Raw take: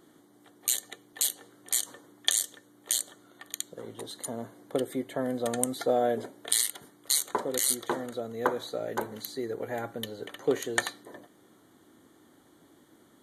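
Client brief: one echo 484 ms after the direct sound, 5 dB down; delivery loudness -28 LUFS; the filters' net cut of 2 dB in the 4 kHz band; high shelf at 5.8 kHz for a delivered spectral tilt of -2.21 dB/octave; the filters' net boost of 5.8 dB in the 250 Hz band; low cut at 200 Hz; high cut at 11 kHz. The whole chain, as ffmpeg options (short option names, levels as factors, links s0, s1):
-af "highpass=200,lowpass=11000,equalizer=f=250:t=o:g=8,equalizer=f=4000:t=o:g=-4,highshelf=f=5800:g=5,aecho=1:1:484:0.562"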